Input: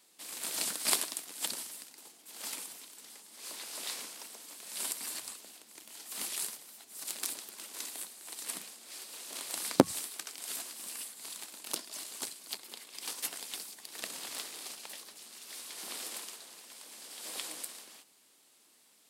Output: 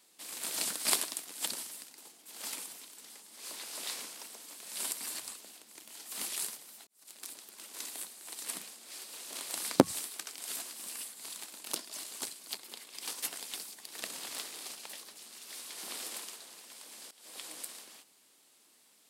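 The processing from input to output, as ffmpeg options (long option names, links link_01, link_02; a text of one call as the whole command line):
ffmpeg -i in.wav -filter_complex "[0:a]asplit=3[link_01][link_02][link_03];[link_01]atrim=end=6.87,asetpts=PTS-STARTPTS,afade=type=out:start_time=6.866:duration=0.004:curve=hsin[link_04];[link_02]atrim=start=6.87:end=17.11,asetpts=PTS-STARTPTS,afade=type=in:duration=1.06,afade=type=out:start_time=10.236:duration=0.004:curve=hsin:silence=0.112202[link_05];[link_03]atrim=start=17.11,asetpts=PTS-STARTPTS,afade=type=in:duration=0.62:silence=0.112202[link_06];[link_04][link_05][link_06]concat=n=3:v=0:a=1" out.wav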